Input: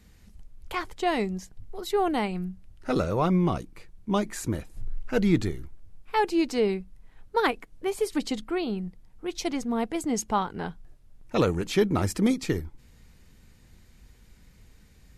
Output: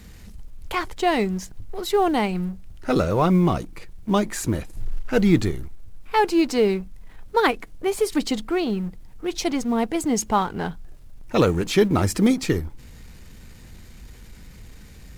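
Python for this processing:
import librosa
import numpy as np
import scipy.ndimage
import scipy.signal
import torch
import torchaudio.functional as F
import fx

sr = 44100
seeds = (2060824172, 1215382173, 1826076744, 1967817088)

y = fx.law_mismatch(x, sr, coded='mu')
y = F.gain(torch.from_numpy(y), 4.5).numpy()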